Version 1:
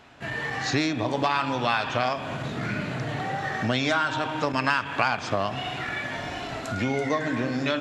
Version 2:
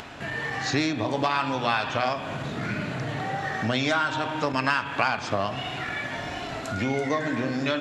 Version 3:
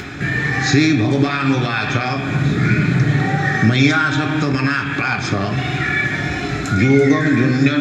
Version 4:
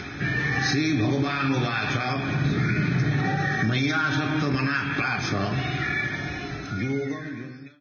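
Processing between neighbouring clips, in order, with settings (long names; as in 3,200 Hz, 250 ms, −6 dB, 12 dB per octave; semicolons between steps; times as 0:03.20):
hum removal 121.9 Hz, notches 37; upward compression, threshold −31 dBFS
brickwall limiter −16.5 dBFS, peak gain reduction 8.5 dB; convolution reverb RT60 0.55 s, pre-delay 3 ms, DRR 7.5 dB; level +2 dB
fade-out on the ending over 2.40 s; brickwall limiter −9 dBFS, peak gain reduction 7.5 dB; level −6 dB; Ogg Vorbis 16 kbit/s 16,000 Hz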